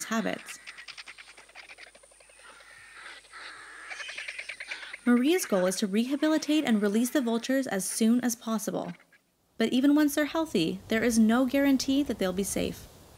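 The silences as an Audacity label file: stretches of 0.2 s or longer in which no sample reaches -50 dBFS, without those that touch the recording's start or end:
9.160000	9.590000	silence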